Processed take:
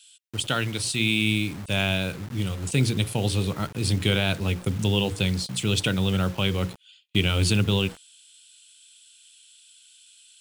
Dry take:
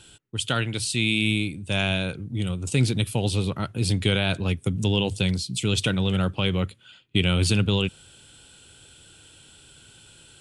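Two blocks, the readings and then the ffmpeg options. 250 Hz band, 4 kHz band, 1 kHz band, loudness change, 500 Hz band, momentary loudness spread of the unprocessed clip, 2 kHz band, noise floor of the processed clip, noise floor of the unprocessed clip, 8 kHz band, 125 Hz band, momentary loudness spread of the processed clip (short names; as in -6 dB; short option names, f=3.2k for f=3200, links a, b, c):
-1.0 dB, 0.0 dB, 0.0 dB, -0.5 dB, -0.5 dB, 7 LU, 0.0 dB, -55 dBFS, -52 dBFS, +0.5 dB, -0.5 dB, 7 LU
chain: -filter_complex "[0:a]bandreject=f=60:t=h:w=6,bandreject=f=120:t=h:w=6,bandreject=f=180:t=h:w=6,bandreject=f=240:t=h:w=6,bandreject=f=300:t=h:w=6,bandreject=f=360:t=h:w=6,bandreject=f=420:t=h:w=6,bandreject=f=480:t=h:w=6,bandreject=f=540:t=h:w=6,acrossover=split=2400[a][b];[a]acrusher=bits=6:mix=0:aa=0.000001[c];[c][b]amix=inputs=2:normalize=0"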